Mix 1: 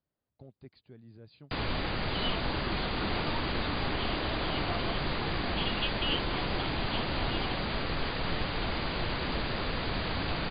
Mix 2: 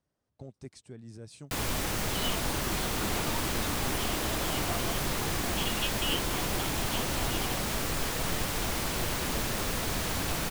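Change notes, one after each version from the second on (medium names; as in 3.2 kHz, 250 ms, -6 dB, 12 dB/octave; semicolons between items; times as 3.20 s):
speech +6.0 dB; master: remove brick-wall FIR low-pass 4.9 kHz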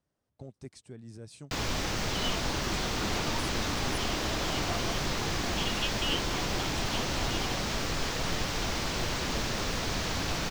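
first sound: add resonant high shelf 7.7 kHz -11 dB, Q 1.5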